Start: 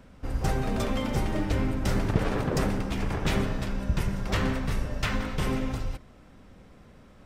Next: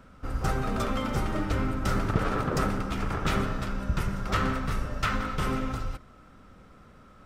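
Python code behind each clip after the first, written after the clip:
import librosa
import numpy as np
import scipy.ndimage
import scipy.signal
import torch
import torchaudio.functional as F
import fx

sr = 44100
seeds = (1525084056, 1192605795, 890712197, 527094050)

y = fx.peak_eq(x, sr, hz=1300.0, db=12.5, octaves=0.3)
y = y * 10.0 ** (-1.5 / 20.0)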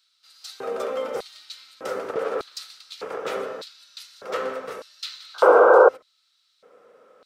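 y = fx.spec_paint(x, sr, seeds[0], shape='noise', start_s=5.34, length_s=0.55, low_hz=320.0, high_hz=1600.0, level_db=-16.0)
y = fx.filter_lfo_highpass(y, sr, shape='square', hz=0.83, low_hz=480.0, high_hz=4100.0, q=6.5)
y = y * 10.0 ** (-3.5 / 20.0)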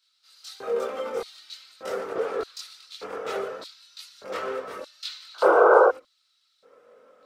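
y = fx.chorus_voices(x, sr, voices=6, hz=0.43, base_ms=23, depth_ms=2.4, mix_pct=55)
y = y * 10.0 ** (1.0 / 20.0)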